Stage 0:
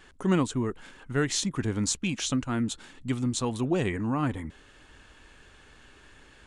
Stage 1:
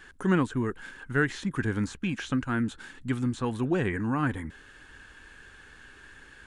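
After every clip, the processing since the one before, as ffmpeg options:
-filter_complex "[0:a]acrossover=split=2700[s0][s1];[s1]acompressor=threshold=0.00398:ratio=4:attack=1:release=60[s2];[s0][s2]amix=inputs=2:normalize=0,equalizer=f=630:t=o:w=0.33:g=-5,equalizer=f=1600:t=o:w=0.33:g=10,equalizer=f=10000:t=o:w=0.33:g=4"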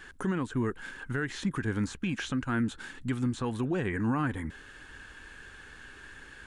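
-af "alimiter=limit=0.0668:level=0:latency=1:release=229,volume=1.26"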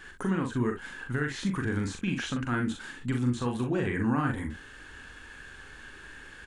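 -af "aecho=1:1:41|63:0.631|0.299"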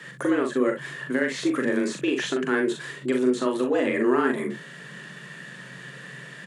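-af "aeval=exprs='0.15*(cos(1*acos(clip(val(0)/0.15,-1,1)))-cos(1*PI/2))+0.0015*(cos(8*acos(clip(val(0)/0.15,-1,1)))-cos(8*PI/2))':c=same,afreqshift=130,volume=1.88"

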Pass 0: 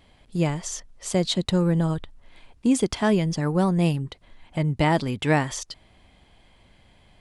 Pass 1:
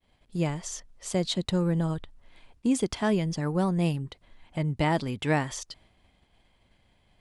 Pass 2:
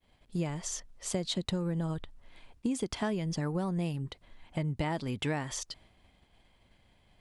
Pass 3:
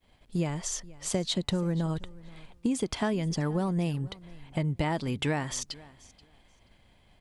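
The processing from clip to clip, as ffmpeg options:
-af "agate=range=0.0224:threshold=0.00316:ratio=3:detection=peak,volume=0.596"
-af "acompressor=threshold=0.0398:ratio=10"
-af "aecho=1:1:481|962:0.0841|0.0143,volume=1.5"

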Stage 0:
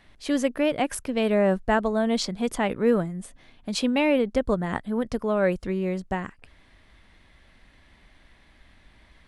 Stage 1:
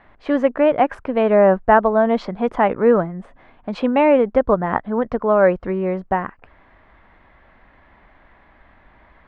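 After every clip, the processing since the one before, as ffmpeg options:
-af "lowpass=1900,equalizer=f=940:w=0.53:g=10.5,volume=1.19"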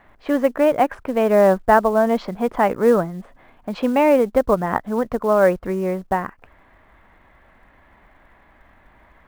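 -af "acrusher=bits=7:mode=log:mix=0:aa=0.000001,volume=0.891"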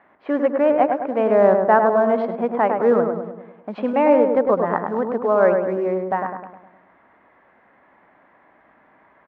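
-filter_complex "[0:a]highpass=230,lowpass=2100,asplit=2[s0][s1];[s1]adelay=103,lowpass=f=1500:p=1,volume=0.631,asplit=2[s2][s3];[s3]adelay=103,lowpass=f=1500:p=1,volume=0.54,asplit=2[s4][s5];[s5]adelay=103,lowpass=f=1500:p=1,volume=0.54,asplit=2[s6][s7];[s7]adelay=103,lowpass=f=1500:p=1,volume=0.54,asplit=2[s8][s9];[s9]adelay=103,lowpass=f=1500:p=1,volume=0.54,asplit=2[s10][s11];[s11]adelay=103,lowpass=f=1500:p=1,volume=0.54,asplit=2[s12][s13];[s13]adelay=103,lowpass=f=1500:p=1,volume=0.54[s14];[s2][s4][s6][s8][s10][s12][s14]amix=inputs=7:normalize=0[s15];[s0][s15]amix=inputs=2:normalize=0,volume=0.891"

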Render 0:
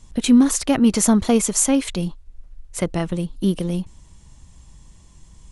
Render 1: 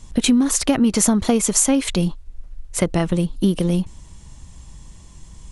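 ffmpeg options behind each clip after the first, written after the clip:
-af "acompressor=threshold=0.126:ratio=12,volume=1.88"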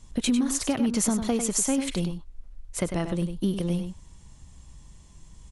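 -filter_complex "[0:a]asplit=2[s0][s1];[s1]adelay=99.13,volume=0.398,highshelf=f=4000:g=-2.23[s2];[s0][s2]amix=inputs=2:normalize=0,volume=0.376"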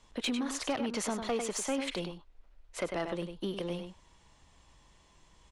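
-filter_complex "[0:a]acrossover=split=360 4600:gain=0.158 1 0.178[s0][s1][s2];[s0][s1][s2]amix=inputs=3:normalize=0,aeval=exprs='0.158*sin(PI/2*1.78*val(0)/0.158)':c=same,volume=0.376"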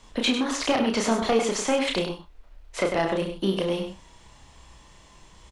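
-filter_complex "[0:a]acrossover=split=6700[s0][s1];[s1]acompressor=threshold=0.00178:ratio=4:attack=1:release=60[s2];[s0][s2]amix=inputs=2:normalize=0,aecho=1:1:31|67:0.631|0.168,volume=2.82"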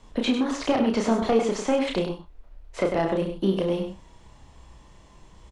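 -filter_complex "[0:a]acrossover=split=9100[s0][s1];[s1]acompressor=threshold=0.00178:ratio=4:attack=1:release=60[s2];[s0][s2]amix=inputs=2:normalize=0,tiltshelf=f=1100:g=4.5,volume=0.794"

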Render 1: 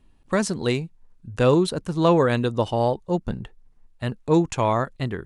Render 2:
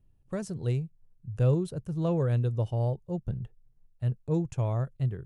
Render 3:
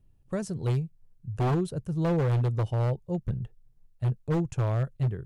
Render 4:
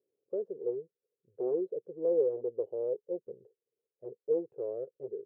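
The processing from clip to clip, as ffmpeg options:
-af "equalizer=f=125:t=o:w=1:g=11,equalizer=f=250:t=o:w=1:g=-9,equalizer=f=1000:t=o:w=1:g=-10,equalizer=f=2000:t=o:w=1:g=-8,equalizer=f=4000:t=o:w=1:g=-10,equalizer=f=8000:t=o:w=1:g=-6,volume=0.422"
-af "aeval=exprs='0.075*(abs(mod(val(0)/0.075+3,4)-2)-1)':c=same,volume=1.33"
-af "asuperpass=centerf=450:order=4:qfactor=3.4,volume=1.88"

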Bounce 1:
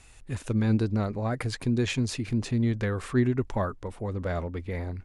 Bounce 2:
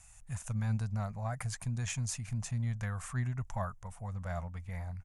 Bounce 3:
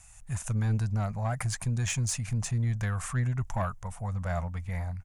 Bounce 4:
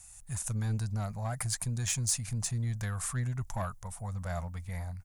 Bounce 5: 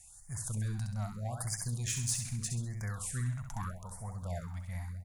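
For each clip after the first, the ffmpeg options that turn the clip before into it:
-af "firequalizer=gain_entry='entry(170,0);entry(320,-27);entry(680,0);entry(4100,-8);entry(6300,7)':delay=0.05:min_phase=1,volume=0.531"
-af "asoftclip=type=tanh:threshold=0.0376,dynaudnorm=f=100:g=5:m=1.58,volume=1.5"
-af "aexciter=amount=2.9:drive=2.3:freq=3700,volume=0.596"
-af "aecho=1:1:66|132|198|264|330:0.501|0.216|0.0927|0.0398|0.0171,afftfilt=real='re*(1-between(b*sr/1024,350*pow(3400/350,0.5+0.5*sin(2*PI*0.8*pts/sr))/1.41,350*pow(3400/350,0.5+0.5*sin(2*PI*0.8*pts/sr))*1.41))':imag='im*(1-between(b*sr/1024,350*pow(3400/350,0.5+0.5*sin(2*PI*0.8*pts/sr))/1.41,350*pow(3400/350,0.5+0.5*sin(2*PI*0.8*pts/sr))*1.41))':win_size=1024:overlap=0.75,volume=0.631"

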